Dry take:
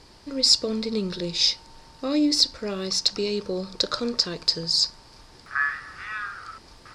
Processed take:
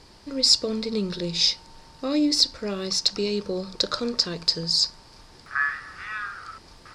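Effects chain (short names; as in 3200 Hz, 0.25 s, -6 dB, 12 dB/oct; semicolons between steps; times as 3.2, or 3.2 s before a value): on a send: inverse Chebyshev low-pass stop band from 980 Hz, stop band 80 dB + reverb RT60 0.45 s, pre-delay 3 ms, DRR 52 dB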